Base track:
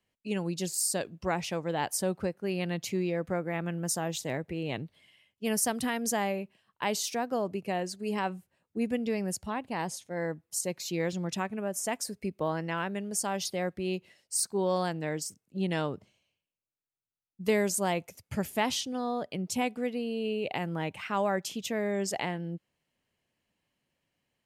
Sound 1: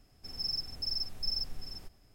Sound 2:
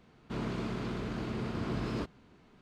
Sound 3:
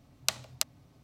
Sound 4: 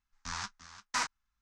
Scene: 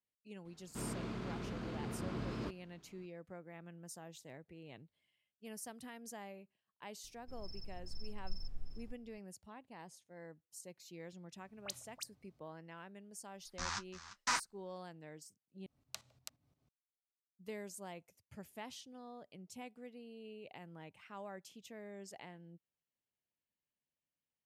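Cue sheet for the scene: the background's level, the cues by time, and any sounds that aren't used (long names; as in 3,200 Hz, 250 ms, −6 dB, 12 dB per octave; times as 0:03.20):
base track −19.5 dB
0:00.45: mix in 2 −6.5 dB
0:07.04: mix in 1 −14.5 dB + spectral tilt −2.5 dB per octave
0:11.36: mix in 3 −15 dB + all-pass dispersion highs, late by 60 ms, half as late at 1,800 Hz
0:13.33: mix in 4 −2 dB
0:15.66: overwrite with 3 −15.5 dB + shaped tremolo saw up 5.7 Hz, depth 75%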